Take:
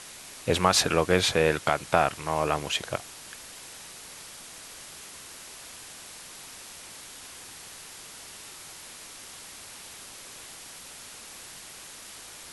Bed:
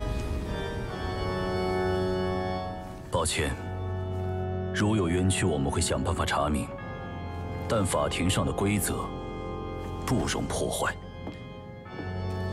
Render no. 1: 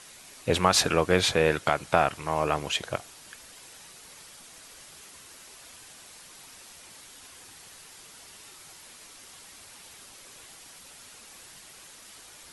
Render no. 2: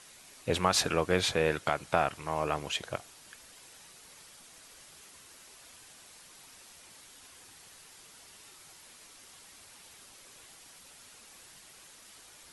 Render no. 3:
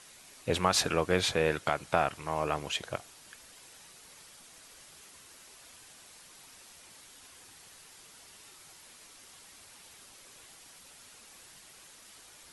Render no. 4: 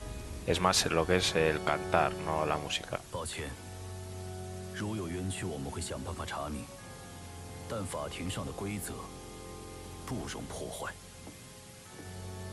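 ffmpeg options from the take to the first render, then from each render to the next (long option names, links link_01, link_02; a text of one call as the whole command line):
ffmpeg -i in.wav -af "afftdn=noise_reduction=6:noise_floor=-45" out.wav
ffmpeg -i in.wav -af "volume=-5dB" out.wav
ffmpeg -i in.wav -af anull out.wav
ffmpeg -i in.wav -i bed.wav -filter_complex "[1:a]volume=-11dB[link_01];[0:a][link_01]amix=inputs=2:normalize=0" out.wav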